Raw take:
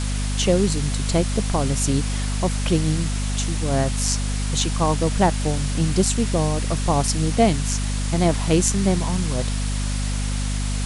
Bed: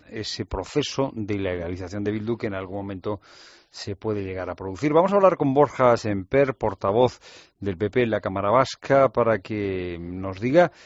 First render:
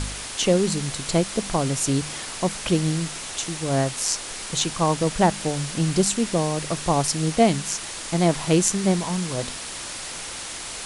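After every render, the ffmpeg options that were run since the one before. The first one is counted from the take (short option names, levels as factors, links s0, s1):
-af "bandreject=f=50:t=h:w=4,bandreject=f=100:t=h:w=4,bandreject=f=150:t=h:w=4,bandreject=f=200:t=h:w=4,bandreject=f=250:t=h:w=4"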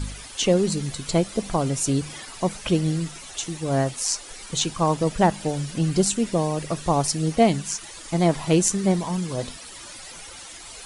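-af "afftdn=nr=12:nf=-34"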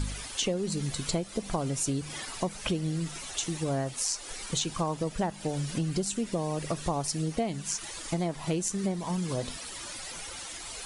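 -af "acompressor=threshold=0.0447:ratio=6"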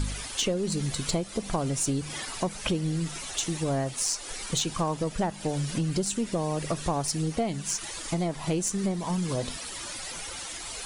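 -af "aeval=exprs='0.237*(cos(1*acos(clip(val(0)/0.237,-1,1)))-cos(1*PI/2))+0.0188*(cos(2*acos(clip(val(0)/0.237,-1,1)))-cos(2*PI/2))+0.00473*(cos(4*acos(clip(val(0)/0.237,-1,1)))-cos(4*PI/2))+0.0188*(cos(5*acos(clip(val(0)/0.237,-1,1)))-cos(5*PI/2))+0.00668*(cos(6*acos(clip(val(0)/0.237,-1,1)))-cos(6*PI/2))':c=same"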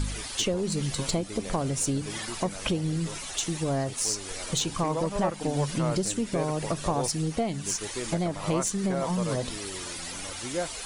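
-filter_complex "[1:a]volume=0.188[s0];[0:a][s0]amix=inputs=2:normalize=0"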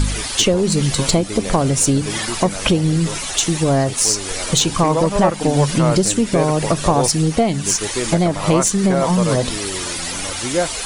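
-af "volume=3.98,alimiter=limit=0.708:level=0:latency=1"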